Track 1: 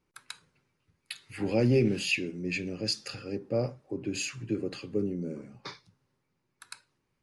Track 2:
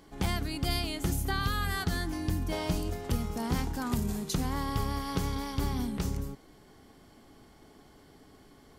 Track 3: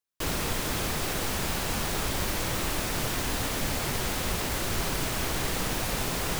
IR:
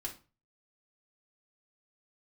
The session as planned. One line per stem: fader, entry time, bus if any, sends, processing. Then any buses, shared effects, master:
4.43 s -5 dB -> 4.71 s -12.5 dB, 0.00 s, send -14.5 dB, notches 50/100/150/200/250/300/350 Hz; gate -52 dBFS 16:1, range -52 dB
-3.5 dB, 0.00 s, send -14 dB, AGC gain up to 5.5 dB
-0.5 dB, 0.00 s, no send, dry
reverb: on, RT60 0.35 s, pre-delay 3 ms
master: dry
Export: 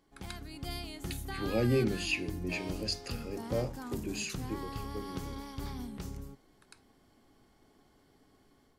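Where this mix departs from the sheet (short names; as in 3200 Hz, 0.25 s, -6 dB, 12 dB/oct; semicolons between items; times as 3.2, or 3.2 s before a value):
stem 2 -3.5 dB -> -15.5 dB; stem 3: muted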